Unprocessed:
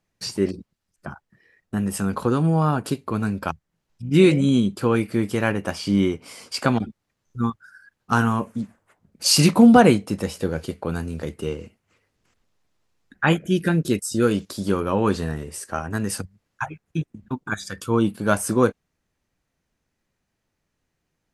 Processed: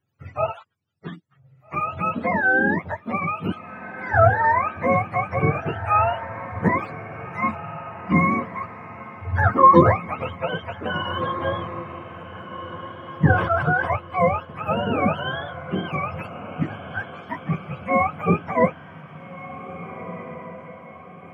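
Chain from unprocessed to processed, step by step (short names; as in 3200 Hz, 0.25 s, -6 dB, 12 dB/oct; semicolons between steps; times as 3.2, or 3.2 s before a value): spectrum mirrored in octaves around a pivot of 500 Hz; diffused feedback echo 1.697 s, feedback 46%, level -13 dB; 13.31–13.96 sustainer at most 59 dB/s; gain +1.5 dB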